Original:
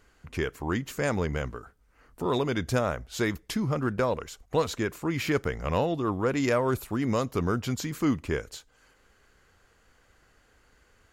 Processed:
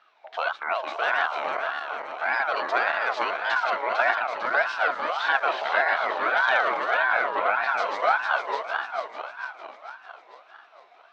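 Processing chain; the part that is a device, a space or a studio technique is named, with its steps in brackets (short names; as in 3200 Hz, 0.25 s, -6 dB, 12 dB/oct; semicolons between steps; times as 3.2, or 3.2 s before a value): regenerating reverse delay 0.225 s, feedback 74%, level -3 dB; 6.97–7.68 tone controls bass 0 dB, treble -11 dB; voice changer toy (ring modulator with a swept carrier 990 Hz, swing 30%, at 1.7 Hz; speaker cabinet 530–4600 Hz, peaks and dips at 680 Hz +9 dB, 1500 Hz +7 dB, 2200 Hz +3 dB, 3900 Hz +5 dB)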